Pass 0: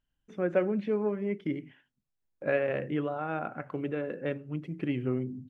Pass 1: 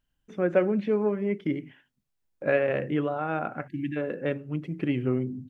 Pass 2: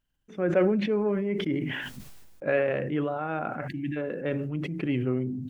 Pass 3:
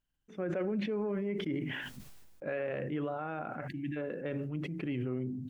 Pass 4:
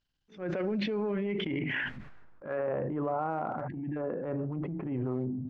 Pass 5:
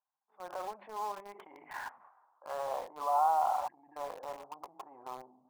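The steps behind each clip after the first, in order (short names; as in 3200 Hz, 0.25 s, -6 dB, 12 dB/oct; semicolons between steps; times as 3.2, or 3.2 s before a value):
spectral delete 3.68–3.97, 350–1600 Hz; gain +4 dB
sustainer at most 30 dB/s; gain -2 dB
limiter -21 dBFS, peak gain reduction 8.5 dB; gain -5.5 dB
low-pass sweep 4700 Hz -> 990 Hz, 0.87–2.73; transient shaper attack -11 dB, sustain +4 dB; gain +2.5 dB
Butterworth band-pass 910 Hz, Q 2.4; in parallel at -7 dB: bit-crush 8-bit; on the sum: gain +5.5 dB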